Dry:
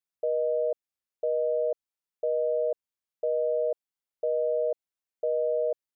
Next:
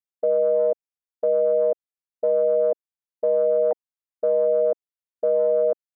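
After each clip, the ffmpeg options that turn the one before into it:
ffmpeg -i in.wav -af "afwtdn=0.0178,volume=7dB" out.wav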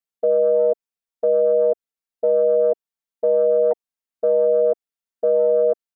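ffmpeg -i in.wav -af "aecho=1:1:4.4:0.73" out.wav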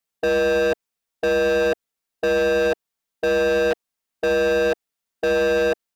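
ffmpeg -i in.wav -af "asoftclip=type=hard:threshold=-26dB,volume=8dB" out.wav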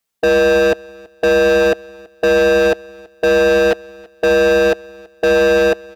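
ffmpeg -i in.wav -af "aecho=1:1:330|660:0.0631|0.0145,volume=7dB" out.wav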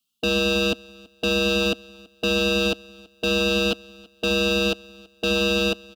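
ffmpeg -i in.wav -af "firequalizer=gain_entry='entry(130,0);entry(240,8);entry(360,-6);entry(570,-11);entry(910,-9);entry(1300,-1);entry(1900,-26);entry(2800,10);entry(5700,2)':delay=0.05:min_phase=1,volume=-4dB" out.wav

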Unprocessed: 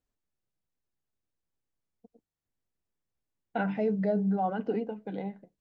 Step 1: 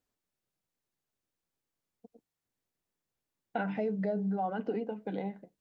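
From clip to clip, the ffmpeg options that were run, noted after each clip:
ffmpeg -i in.wav -af "lowshelf=frequency=84:gain=-12,acompressor=threshold=-35dB:ratio=2.5,volume=3dB" out.wav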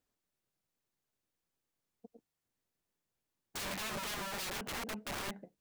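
ffmpeg -i in.wav -af "aeval=exprs='(mod(56.2*val(0)+1,2)-1)/56.2':channel_layout=same" out.wav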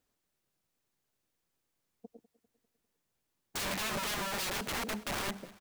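ffmpeg -i in.wav -af "aecho=1:1:199|398|597|796:0.112|0.0572|0.0292|0.0149,volume=4.5dB" out.wav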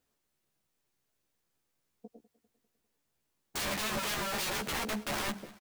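ffmpeg -i in.wav -filter_complex "[0:a]asplit=2[link_01][link_02];[link_02]adelay=14,volume=-5dB[link_03];[link_01][link_03]amix=inputs=2:normalize=0" out.wav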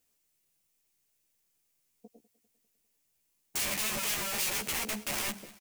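ffmpeg -i in.wav -af "aexciter=amount=1.1:drive=9.3:freq=2100,volume=-3.5dB" out.wav

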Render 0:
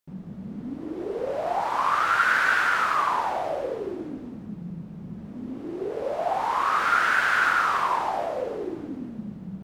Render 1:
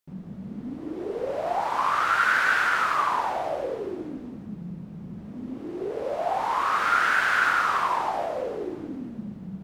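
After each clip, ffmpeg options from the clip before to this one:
ffmpeg -i in.wav -af "bandreject=frequency=55.32:width_type=h:width=4,bandreject=frequency=110.64:width_type=h:width=4,bandreject=frequency=165.96:width_type=h:width=4,bandreject=frequency=221.28:width_type=h:width=4,bandreject=frequency=276.6:width_type=h:width=4,bandreject=frequency=331.92:width_type=h:width=4,bandreject=frequency=387.24:width_type=h:width=4,bandreject=frequency=442.56:width_type=h:width=4,bandreject=frequency=497.88:width_type=h:width=4,bandreject=frequency=553.2:width_type=h:width=4,bandreject=frequency=608.52:width_type=h:width=4,bandreject=frequency=663.84:width_type=h:width=4,bandreject=frequency=719.16:width_type=h:width=4,bandreject=frequency=774.48:width_type=h:width=4,bandreject=frequency=829.8:width_type=h:width=4,bandreject=frequency=885.12:width_type=h:width=4,bandreject=frequency=940.44:width_type=h:width=4,bandreject=frequency=995.76:width_type=h:width=4,bandreject=frequency=1051.08:width_type=h:width=4,bandreject=frequency=1106.4:width_type=h:width=4,bandreject=frequency=1161.72:width_type=h:width=4,bandreject=frequency=1217.04:width_type=h:width=4,bandreject=frequency=1272.36:width_type=h:width=4,bandreject=frequency=1327.68:width_type=h:width=4,bandreject=frequency=1383:width_type=h:width=4,bandreject=frequency=1438.32:width_type=h:width=4,bandreject=frequency=1493.64:width_type=h:width=4,bandreject=frequency=1548.96:width_type=h:width=4,bandreject=frequency=1604.28:width_type=h:width=4,bandreject=frequency=1659.6:width_type=h:width=4,bandreject=frequency=1714.92:width_type=h:width=4,bandreject=frequency=1770.24:width_type=h:width=4" out.wav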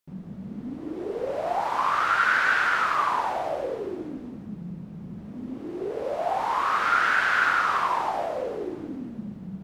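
ffmpeg -i in.wav -filter_complex "[0:a]acrossover=split=6400[link_01][link_02];[link_02]acompressor=threshold=-53dB:ratio=4:attack=1:release=60[link_03];[link_01][link_03]amix=inputs=2:normalize=0" out.wav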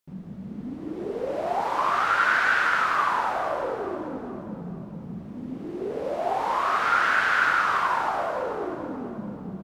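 ffmpeg -i in.wav -filter_complex "[0:a]asplit=2[link_01][link_02];[link_02]adelay=435,lowpass=frequency=1600:poles=1,volume=-8dB,asplit=2[link_03][link_04];[link_04]adelay=435,lowpass=frequency=1600:poles=1,volume=0.5,asplit=2[link_05][link_06];[link_06]adelay=435,lowpass=frequency=1600:poles=1,volume=0.5,asplit=2[link_07][link_08];[link_08]adelay=435,lowpass=frequency=1600:poles=1,volume=0.5,asplit=2[link_09][link_10];[link_10]adelay=435,lowpass=frequency=1600:poles=1,volume=0.5,asplit=2[link_11][link_12];[link_12]adelay=435,lowpass=frequency=1600:poles=1,volume=0.5[link_13];[link_01][link_03][link_05][link_07][link_09][link_11][link_13]amix=inputs=7:normalize=0" out.wav

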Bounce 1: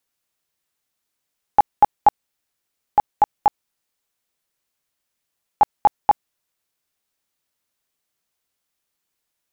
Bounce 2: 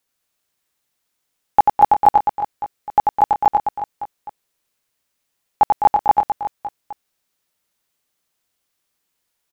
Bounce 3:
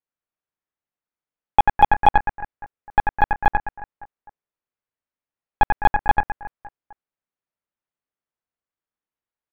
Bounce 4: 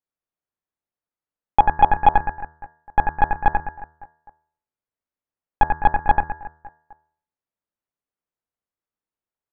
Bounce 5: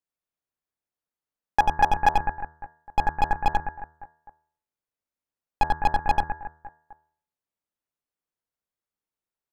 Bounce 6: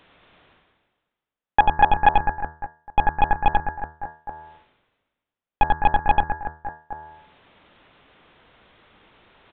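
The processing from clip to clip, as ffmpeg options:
ffmpeg -i in.wav -af "aecho=1:1:90|207|359.1|556.8|813.9:0.631|0.398|0.251|0.158|0.1,volume=2dB" out.wav
ffmpeg -i in.wav -af "aeval=exprs='0.75*(cos(1*acos(clip(val(0)/0.75,-1,1)))-cos(1*PI/2))+0.133*(cos(3*acos(clip(val(0)/0.75,-1,1)))-cos(3*PI/2))+0.168*(cos(4*acos(clip(val(0)/0.75,-1,1)))-cos(4*PI/2))+0.00944*(cos(5*acos(clip(val(0)/0.75,-1,1)))-cos(5*PI/2))+0.0299*(cos(7*acos(clip(val(0)/0.75,-1,1)))-cos(7*PI/2))':channel_layout=same,lowpass=1900,volume=-1dB" out.wav
ffmpeg -i in.wav -af "highshelf=frequency=2500:gain=-11.5,bandreject=frequency=78.47:width_type=h:width=4,bandreject=frequency=156.94:width_type=h:width=4,bandreject=frequency=235.41:width_type=h:width=4,bandreject=frequency=313.88:width_type=h:width=4,bandreject=frequency=392.35:width_type=h:width=4,bandreject=frequency=470.82:width_type=h:width=4,bandreject=frequency=549.29:width_type=h:width=4,bandreject=frequency=627.76:width_type=h:width=4,bandreject=frequency=706.23:width_type=h:width=4,bandreject=frequency=784.7:width_type=h:width=4,bandreject=frequency=863.17:width_type=h:width=4,bandreject=frequency=941.64:width_type=h:width=4,bandreject=frequency=1020.11:width_type=h:width=4,bandreject=frequency=1098.58:width_type=h:width=4,bandreject=frequency=1177.05:width_type=h:width=4,bandreject=frequency=1255.52:width_type=h:width=4,bandreject=frequency=1333.99:width_type=h:width=4,bandreject=frequency=1412.46:width_type=h:width=4,bandreject=frequency=1490.93:width_type=h:width=4,bandreject=frequency=1569.4:width_type=h:width=4,bandreject=frequency=1647.87:width_type=h:width=4,bandreject=frequency=1726.34:width_type=h:width=4,bandreject=frequency=1804.81:width_type=h:width=4,bandreject=frequency=1883.28:width_type=h:width=4,volume=1dB" out.wav
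ffmpeg -i in.wav -af "asoftclip=type=hard:threshold=-10dB,volume=-1.5dB" out.wav
ffmpeg -i in.wav -af "areverse,acompressor=mode=upward:threshold=-26dB:ratio=2.5,areverse,aresample=8000,aresample=44100,volume=4dB" out.wav

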